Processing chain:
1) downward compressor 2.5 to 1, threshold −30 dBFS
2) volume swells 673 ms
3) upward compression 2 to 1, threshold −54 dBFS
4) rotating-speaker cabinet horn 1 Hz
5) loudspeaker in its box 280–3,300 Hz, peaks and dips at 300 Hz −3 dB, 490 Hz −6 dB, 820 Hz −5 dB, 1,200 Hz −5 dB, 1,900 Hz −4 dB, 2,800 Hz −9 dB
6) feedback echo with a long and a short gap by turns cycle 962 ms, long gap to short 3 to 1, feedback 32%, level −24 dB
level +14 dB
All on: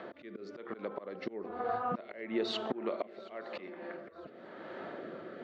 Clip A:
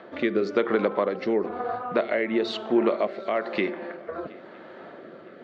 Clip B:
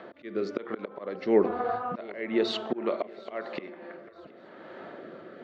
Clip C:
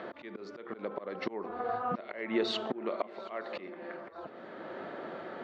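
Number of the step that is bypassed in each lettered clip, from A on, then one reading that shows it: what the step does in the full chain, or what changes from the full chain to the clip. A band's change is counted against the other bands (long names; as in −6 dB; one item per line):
2, 4 kHz band −7.5 dB
1, change in crest factor +3.5 dB
4, 2 kHz band +2.0 dB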